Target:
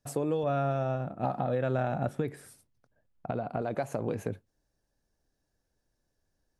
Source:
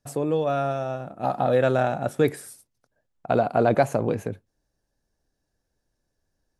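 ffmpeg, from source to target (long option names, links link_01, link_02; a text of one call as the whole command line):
ffmpeg -i in.wav -filter_complex "[0:a]acompressor=threshold=-23dB:ratio=10,asettb=1/sr,asplit=3[link_01][link_02][link_03];[link_01]atrim=end=0.434[link_04];[link_02]atrim=start=0.43:end=3.62,asetpts=PTS-STARTPTS,afade=type=in:duration=0.004:curve=qsin,afade=type=out:start_time=3.186:duration=0.004:curve=qsin,bass=frequency=250:gain=6,treble=frequency=4000:gain=-8[link_05];[link_03]atrim=start=3.616[link_06];[link_04][link_05]acrossfade=duration=0.004:curve1=hsin:curve2=qsin[link_07];[link_07][link_06]acrossfade=duration=0.004:curve1=qsin:curve2=hsin,alimiter=limit=-15.5dB:level=0:latency=1:release=433,volume=-2dB" out.wav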